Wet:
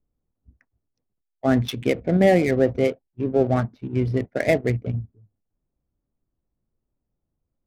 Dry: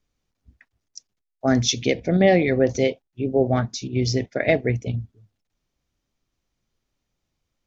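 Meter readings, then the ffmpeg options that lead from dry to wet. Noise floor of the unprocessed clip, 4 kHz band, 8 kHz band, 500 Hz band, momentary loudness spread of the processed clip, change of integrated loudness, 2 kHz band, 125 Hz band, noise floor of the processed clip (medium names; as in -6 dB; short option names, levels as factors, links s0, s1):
-80 dBFS, -8.5 dB, no reading, 0.0 dB, 10 LU, -0.5 dB, -2.0 dB, 0.0 dB, -81 dBFS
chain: -af "lowpass=2400,adynamicsmooth=sensitivity=6:basefreq=830"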